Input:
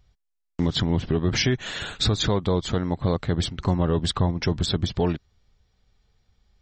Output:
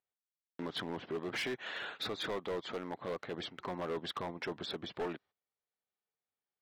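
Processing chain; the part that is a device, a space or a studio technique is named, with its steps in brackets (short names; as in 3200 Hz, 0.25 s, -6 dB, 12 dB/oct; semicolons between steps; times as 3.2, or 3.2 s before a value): walkie-talkie (BPF 410–2600 Hz; hard clip -26.5 dBFS, distortion -9 dB; gate -55 dBFS, range -15 dB); gain -6 dB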